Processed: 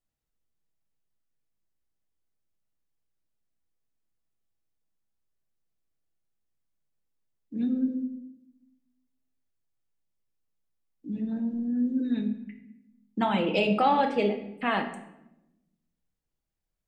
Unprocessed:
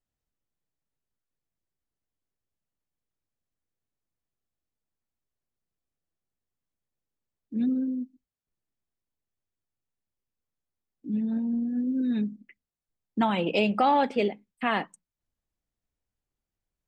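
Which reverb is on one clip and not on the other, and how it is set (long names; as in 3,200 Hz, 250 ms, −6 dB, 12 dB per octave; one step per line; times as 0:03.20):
rectangular room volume 290 cubic metres, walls mixed, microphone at 0.64 metres
level −1.5 dB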